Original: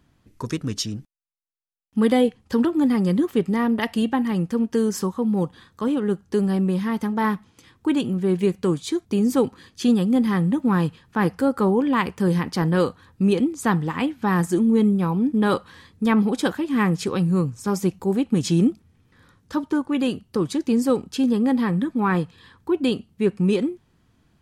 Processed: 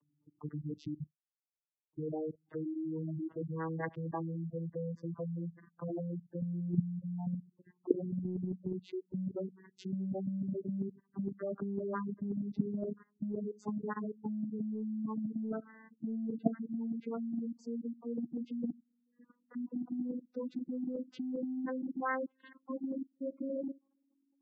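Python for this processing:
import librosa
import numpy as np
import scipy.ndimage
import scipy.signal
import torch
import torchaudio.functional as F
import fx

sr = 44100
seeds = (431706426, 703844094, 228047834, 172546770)

y = fx.vocoder_glide(x, sr, note=50, semitones=11)
y = fx.level_steps(y, sr, step_db=20)
y = fx.dynamic_eq(y, sr, hz=1600.0, q=1.6, threshold_db=-51.0, ratio=4.0, max_db=5)
y = fx.spec_gate(y, sr, threshold_db=-15, keep='strong')
y = fx.low_shelf(y, sr, hz=460.0, db=-5.5)
y = fx.over_compress(y, sr, threshold_db=-31.0, ratio=-0.5)
y = fx.env_lowpass_down(y, sr, base_hz=2400.0, full_db=-36.5)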